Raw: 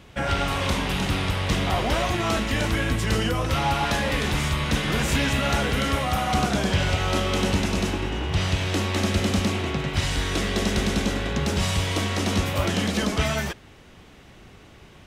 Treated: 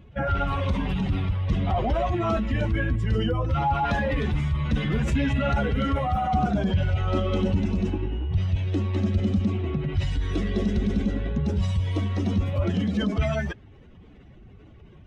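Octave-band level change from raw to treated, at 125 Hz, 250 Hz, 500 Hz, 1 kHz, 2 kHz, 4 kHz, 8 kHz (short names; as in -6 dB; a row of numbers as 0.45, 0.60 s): +1.5 dB, 0.0 dB, -2.0 dB, -2.0 dB, -7.5 dB, -12.0 dB, under -15 dB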